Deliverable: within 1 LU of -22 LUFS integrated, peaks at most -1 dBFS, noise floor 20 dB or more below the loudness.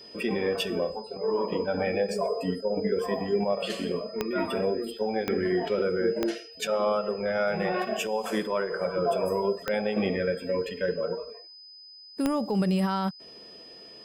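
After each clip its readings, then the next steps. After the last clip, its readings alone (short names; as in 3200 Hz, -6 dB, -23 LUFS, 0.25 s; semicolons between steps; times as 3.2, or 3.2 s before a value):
clicks 5; steady tone 5000 Hz; tone level -46 dBFS; loudness -28.5 LUFS; peak -10.5 dBFS; loudness target -22.0 LUFS
-> de-click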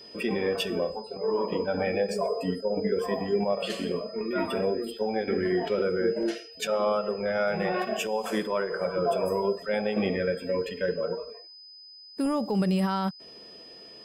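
clicks 2; steady tone 5000 Hz; tone level -46 dBFS
-> notch 5000 Hz, Q 30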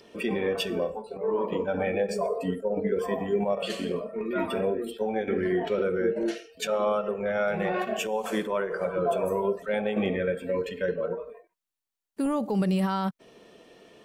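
steady tone none; loudness -28.5 LUFS; peak -15.0 dBFS; loudness target -22.0 LUFS
-> gain +6.5 dB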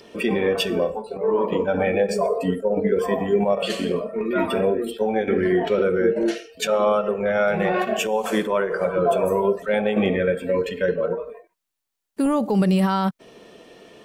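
loudness -22.0 LUFS; peak -8.5 dBFS; noise floor -73 dBFS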